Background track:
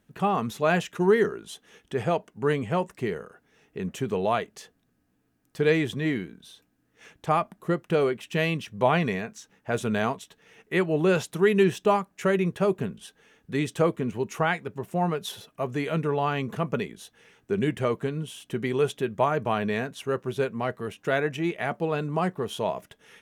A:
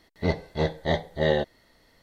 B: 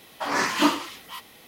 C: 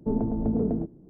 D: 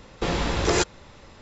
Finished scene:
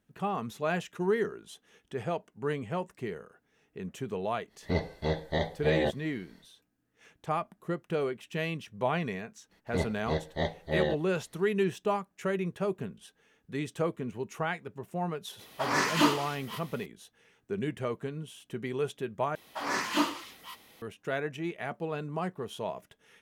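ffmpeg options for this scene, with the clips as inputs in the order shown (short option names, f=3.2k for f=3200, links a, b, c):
-filter_complex "[1:a]asplit=2[a][b];[2:a]asplit=2[c][d];[0:a]volume=-7.5dB[e];[a]alimiter=level_in=16dB:limit=-1dB:release=50:level=0:latency=1[f];[e]asplit=2[g][h];[g]atrim=end=19.354[i];[d]atrim=end=1.47,asetpts=PTS-STARTPTS,volume=-7dB[j];[h]atrim=start=20.816[k];[f]atrim=end=2.02,asetpts=PTS-STARTPTS,volume=-17.5dB,afade=t=in:d=0.1,afade=t=out:st=1.92:d=0.1,adelay=4470[l];[b]atrim=end=2.02,asetpts=PTS-STARTPTS,volume=-6dB,afade=t=in:d=0.004:c=hsin,afade=t=out:st=2.016:d=0.004:c=hsin,adelay=9510[m];[c]atrim=end=1.47,asetpts=PTS-STARTPTS,volume=-3.5dB,afade=t=in:d=0.004:c=hsin,afade=t=out:st=1.466:d=0.004:c=hsin,adelay=15390[n];[i][j]acrossfade=d=0.004:c1=hsin:c2=hsin[o];[o][k]acrossfade=d=0.004:c1=hsin:c2=hsin[p];[p][l][m][n]amix=inputs=4:normalize=0"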